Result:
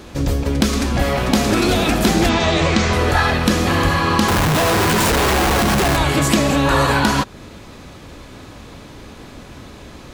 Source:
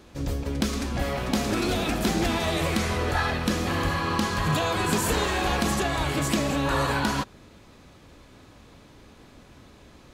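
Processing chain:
in parallel at −1 dB: downward compressor, threshold −34 dBFS, peak gain reduction 13.5 dB
0:02.29–0:02.93: on the sum: Butterworth low-pass 7,300 Hz 36 dB per octave
0:04.28–0:05.97: comparator with hysteresis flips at −28.5 dBFS
level +7.5 dB

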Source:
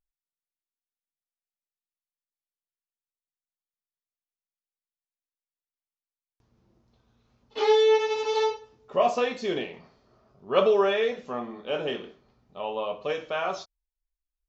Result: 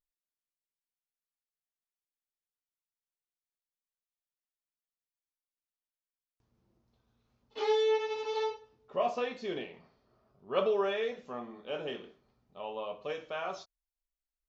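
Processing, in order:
0:07.91–0:10.84: low-pass filter 5,500 Hz 12 dB per octave
level −8 dB

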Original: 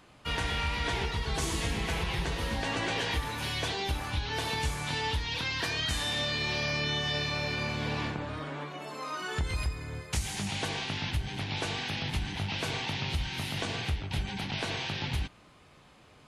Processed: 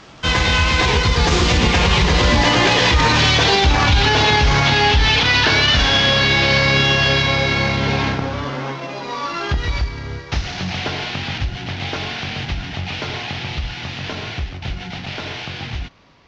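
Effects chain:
variable-slope delta modulation 32 kbit/s
source passing by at 0:03.63, 28 m/s, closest 28 metres
boost into a limiter +31 dB
level −4.5 dB

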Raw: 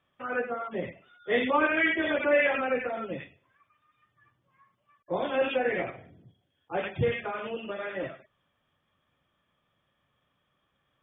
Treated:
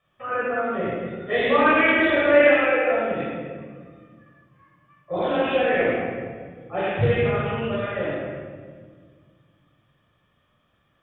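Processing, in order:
0:02.41–0:02.89: Butterworth high-pass 310 Hz 36 dB per octave
convolution reverb RT60 1.8 s, pre-delay 18 ms, DRR −5.5 dB
highs frequency-modulated by the lows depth 0.14 ms
level −2 dB

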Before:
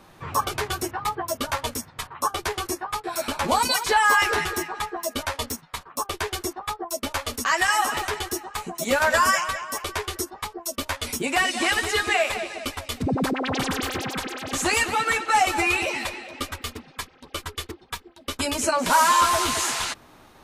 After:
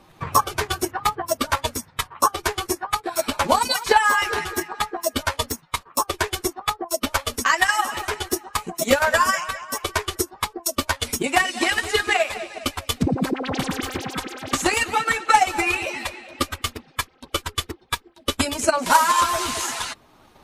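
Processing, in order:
spectral magnitudes quantised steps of 15 dB
transient designer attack +10 dB, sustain −2 dB
level −1 dB

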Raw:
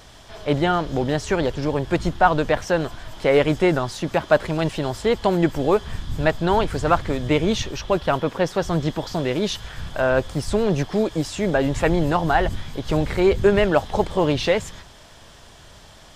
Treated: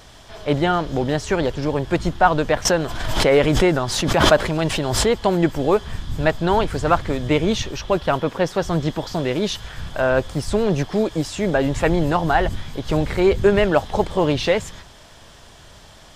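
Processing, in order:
0:02.65–0:05.11: background raised ahead of every attack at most 35 dB per second
level +1 dB

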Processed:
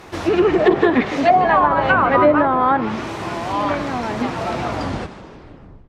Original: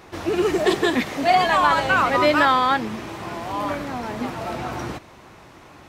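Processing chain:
turntable brake at the end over 1.28 s
treble cut that deepens with the level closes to 750 Hz, closed at −12.5 dBFS
on a send: echo with shifted repeats 153 ms, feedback 51%, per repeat +49 Hz, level −15 dB
on the sum: level +5.5 dB

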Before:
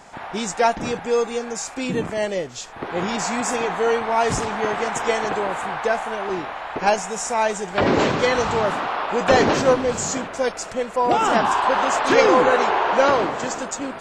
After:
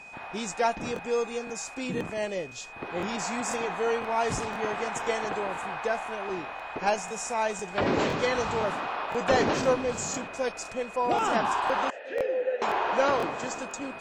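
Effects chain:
steady tone 2,500 Hz −37 dBFS
0:11.90–0:12.62: formant filter e
regular buffer underruns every 0.51 s, samples 1,024, repeat, from 0:00.94
level −7.5 dB

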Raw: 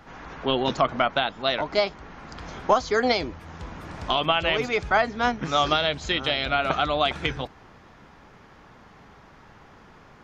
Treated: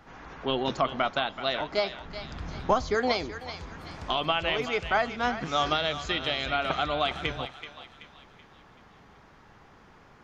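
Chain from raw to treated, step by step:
0:02.05–0:02.95: bass and treble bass +9 dB, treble −1 dB
feedback echo with a high-pass in the loop 380 ms, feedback 44%, high-pass 890 Hz, level −9.5 dB
on a send at −22 dB: convolution reverb RT60 0.85 s, pre-delay 3 ms
on the sum: level −4.5 dB

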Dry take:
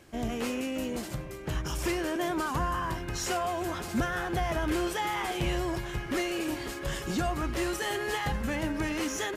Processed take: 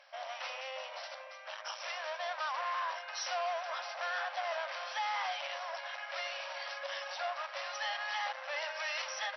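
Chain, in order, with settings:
0:08.56–0:09.02: spectral tilt +3 dB per octave
hard clipping −31.5 dBFS, distortion −9 dB
linear-phase brick-wall band-pass 520–5,900 Hz

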